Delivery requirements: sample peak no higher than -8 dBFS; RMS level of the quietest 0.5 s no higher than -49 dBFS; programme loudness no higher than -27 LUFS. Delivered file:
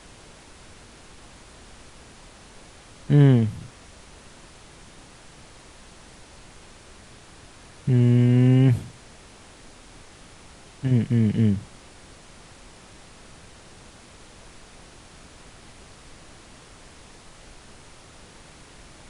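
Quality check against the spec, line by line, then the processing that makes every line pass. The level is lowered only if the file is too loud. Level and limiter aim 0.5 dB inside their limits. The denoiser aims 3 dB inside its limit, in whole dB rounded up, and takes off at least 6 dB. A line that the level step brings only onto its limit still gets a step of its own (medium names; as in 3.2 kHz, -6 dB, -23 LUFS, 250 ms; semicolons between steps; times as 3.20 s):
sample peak -6.5 dBFS: fail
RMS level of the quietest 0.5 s -48 dBFS: fail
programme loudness -20.0 LUFS: fail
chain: trim -7.5 dB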